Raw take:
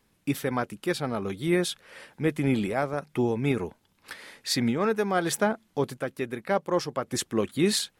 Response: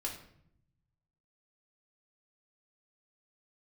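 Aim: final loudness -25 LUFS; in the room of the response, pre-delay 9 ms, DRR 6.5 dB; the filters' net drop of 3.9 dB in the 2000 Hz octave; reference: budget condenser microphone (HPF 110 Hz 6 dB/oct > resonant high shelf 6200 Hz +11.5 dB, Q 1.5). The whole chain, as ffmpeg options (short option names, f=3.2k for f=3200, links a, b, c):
-filter_complex "[0:a]equalizer=f=2k:t=o:g=-4,asplit=2[a][b];[1:a]atrim=start_sample=2205,adelay=9[c];[b][c]afir=irnorm=-1:irlink=0,volume=-7.5dB[d];[a][d]amix=inputs=2:normalize=0,highpass=f=110:p=1,highshelf=f=6.2k:t=q:w=1.5:g=11.5,volume=0.5dB"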